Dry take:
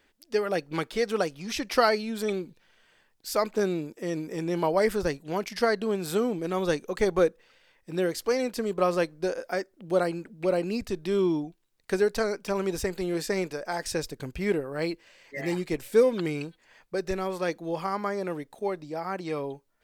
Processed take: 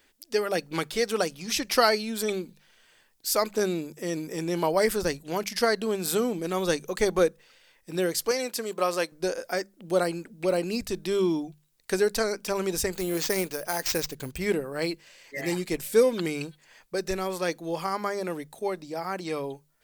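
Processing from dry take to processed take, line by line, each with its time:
8.31–9.12 s: high-pass 450 Hz 6 dB/octave
12.95–14.38 s: careless resampling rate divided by 4×, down none, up hold
whole clip: treble shelf 4.4 kHz +11 dB; hum notches 50/100/150/200 Hz

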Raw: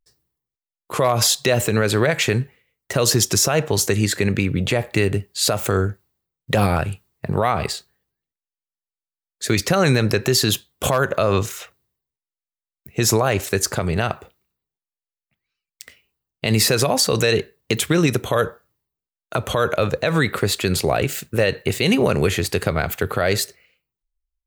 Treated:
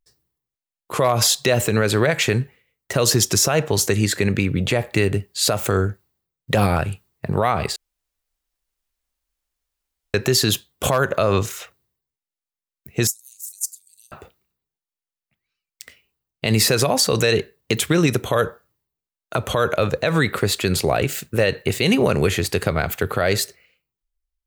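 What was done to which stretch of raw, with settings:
7.76–10.14 s: room tone
13.07–14.12 s: inverse Chebyshev high-pass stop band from 1.7 kHz, stop band 70 dB

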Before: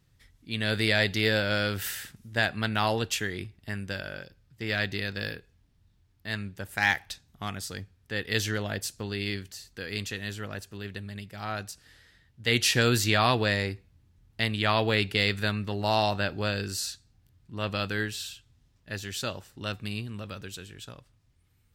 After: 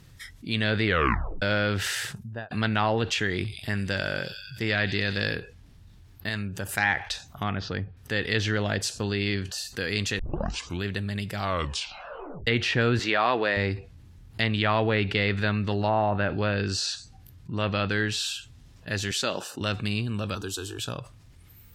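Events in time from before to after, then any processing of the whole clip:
0.85 s: tape stop 0.57 s
1.99–2.51 s: studio fade out
3.34–5.26 s: feedback echo behind a high-pass 91 ms, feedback 69%, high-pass 3.6 kHz, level -9.5 dB
6.29–6.69 s: compression 1.5:1, threshold -47 dBFS
7.43–7.97 s: Gaussian low-pass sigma 2.6 samples
9.12–9.58 s: treble shelf 5.6 kHz -7.5 dB
10.19 s: tape start 0.65 s
11.37 s: tape stop 1.10 s
12.99–13.57 s: high-pass 340 Hz
15.78–17.90 s: low-pass that closes with the level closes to 1.7 kHz, closed at -22.5 dBFS
19.11–19.61 s: high-pass 220 Hz
20.35–20.79 s: static phaser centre 570 Hz, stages 6
whole clip: spectral noise reduction 16 dB; low-pass that closes with the level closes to 2.3 kHz, closed at -22 dBFS; level flattener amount 50%

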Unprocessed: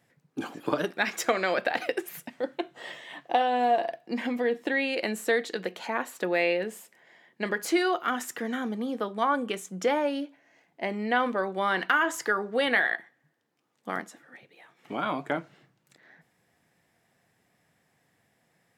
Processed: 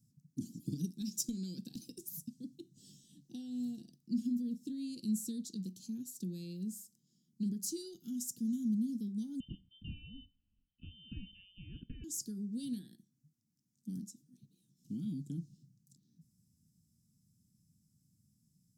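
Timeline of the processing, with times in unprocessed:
9.40–12.04 s: frequency inversion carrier 3.3 kHz
whole clip: elliptic band-stop 220–5500 Hz, stop band 50 dB; bass shelf 190 Hz +8 dB; trim -1.5 dB

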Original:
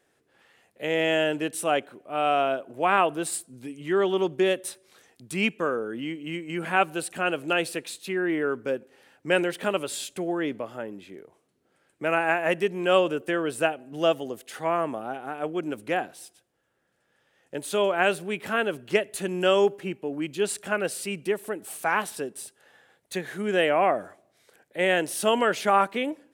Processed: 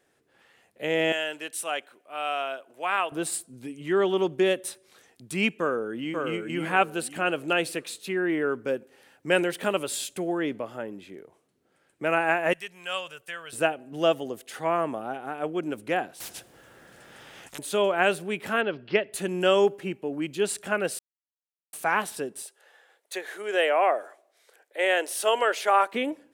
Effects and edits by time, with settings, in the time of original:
1.12–3.12 s: high-pass 1.5 kHz 6 dB/octave
5.50–6.17 s: echo throw 540 ms, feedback 30%, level -4 dB
8.70–10.38 s: treble shelf 7.8 kHz +4.5 dB
12.53–13.53 s: amplifier tone stack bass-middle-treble 10-0-10
16.20–17.59 s: spectrum-flattening compressor 10:1
18.61–19.13 s: elliptic low-pass 5 kHz
20.99–21.73 s: mute
22.42–25.93 s: high-pass 400 Hz 24 dB/octave

